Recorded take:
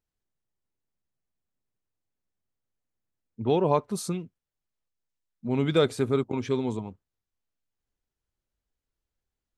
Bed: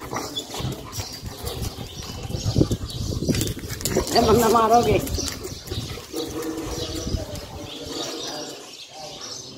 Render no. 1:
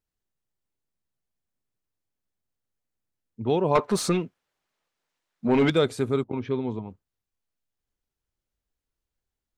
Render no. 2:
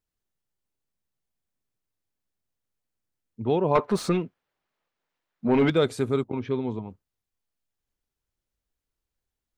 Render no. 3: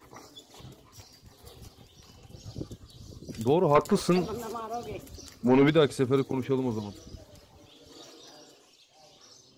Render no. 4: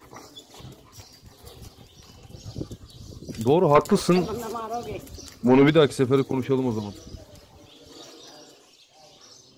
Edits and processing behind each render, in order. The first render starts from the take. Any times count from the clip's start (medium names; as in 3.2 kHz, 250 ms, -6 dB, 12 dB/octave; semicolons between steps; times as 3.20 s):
3.75–5.70 s: overdrive pedal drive 24 dB, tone 2.1 kHz, clips at -9.5 dBFS; 6.24–6.90 s: distance through air 250 m
3.47–5.82 s: peaking EQ 8.4 kHz -8.5 dB 1.9 oct
add bed -19.5 dB
trim +4.5 dB